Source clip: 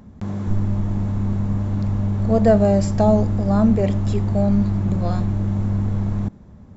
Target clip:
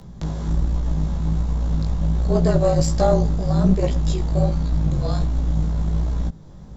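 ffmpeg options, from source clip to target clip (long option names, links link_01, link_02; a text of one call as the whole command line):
ffmpeg -i in.wav -filter_complex "[0:a]afreqshift=-41,asplit=2[link_01][link_02];[link_02]acompressor=threshold=-31dB:ratio=6,volume=2dB[link_03];[link_01][link_03]amix=inputs=2:normalize=0,flanger=delay=15:depth=6.3:speed=1.3,highshelf=frequency=3000:width_type=q:width=1.5:gain=6,aeval=exprs='(tanh(2.51*val(0)+0.55)-tanh(0.55))/2.51':channel_layout=same,volume=2.5dB" out.wav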